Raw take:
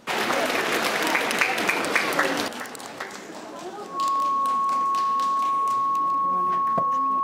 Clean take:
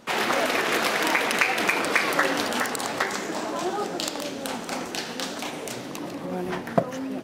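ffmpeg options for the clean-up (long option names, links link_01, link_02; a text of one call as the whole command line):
ffmpeg -i in.wav -af "bandreject=frequency=1100:width=30,asetnsamples=nb_out_samples=441:pad=0,asendcmd='2.48 volume volume 8dB',volume=0dB" out.wav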